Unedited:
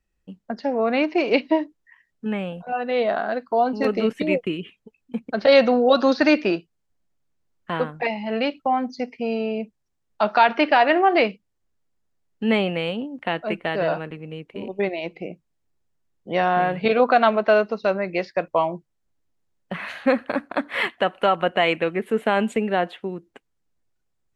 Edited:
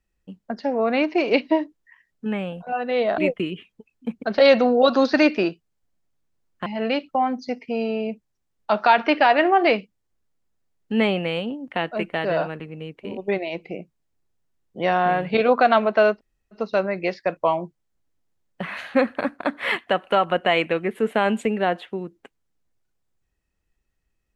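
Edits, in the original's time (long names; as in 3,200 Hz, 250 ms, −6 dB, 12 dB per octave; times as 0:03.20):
0:03.18–0:04.25: remove
0:07.73–0:08.17: remove
0:17.67: splice in room tone 0.40 s, crossfade 0.10 s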